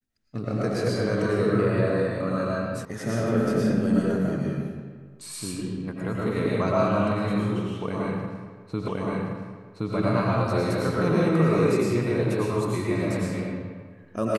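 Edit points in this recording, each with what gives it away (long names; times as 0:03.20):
0:02.85: cut off before it has died away
0:08.88: the same again, the last 1.07 s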